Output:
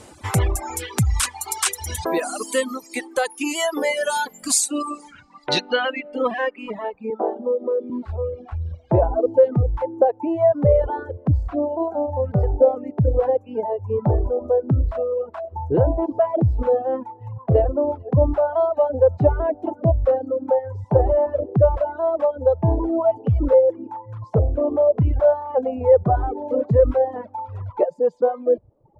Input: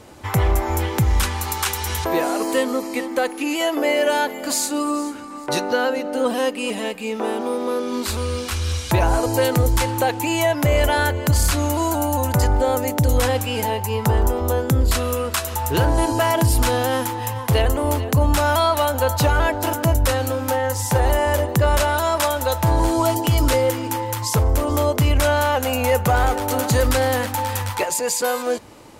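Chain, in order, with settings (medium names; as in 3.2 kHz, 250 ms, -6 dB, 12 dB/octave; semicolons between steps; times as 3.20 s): reverb removal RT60 1.9 s; 7.10–7.90 s: elliptic high-pass 210 Hz; reverb removal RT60 1.5 s; low-pass sweep 9.2 kHz -> 580 Hz, 4.76–7.41 s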